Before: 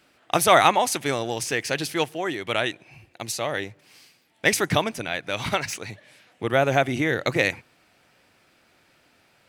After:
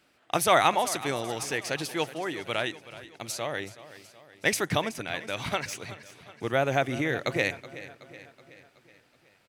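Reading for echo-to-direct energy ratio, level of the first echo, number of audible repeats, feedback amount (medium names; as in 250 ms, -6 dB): -14.5 dB, -16.0 dB, 4, 54%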